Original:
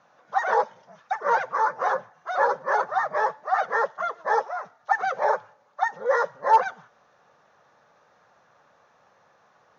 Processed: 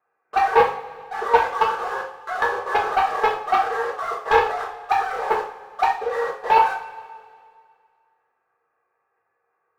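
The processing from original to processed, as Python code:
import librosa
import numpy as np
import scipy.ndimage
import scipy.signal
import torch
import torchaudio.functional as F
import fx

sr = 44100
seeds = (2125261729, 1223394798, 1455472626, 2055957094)

y = scipy.signal.sosfilt(scipy.signal.cheby1(10, 1.0, 2700.0, 'lowpass', fs=sr, output='sos'), x)
y = fx.low_shelf(y, sr, hz=110.0, db=-7.0)
y = fx.hum_notches(y, sr, base_hz=60, count=8)
y = y + 0.78 * np.pad(y, (int(2.5 * sr / 1000.0), 0))[:len(y)]
y = fx.room_flutter(y, sr, wall_m=5.5, rt60_s=0.24)
y = fx.level_steps(y, sr, step_db=18)
y = fx.leveller(y, sr, passes=2)
y = fx.rev_double_slope(y, sr, seeds[0], early_s=0.42, late_s=2.1, knee_db=-18, drr_db=-4.5)
y = y * librosa.db_to_amplitude(-2.0)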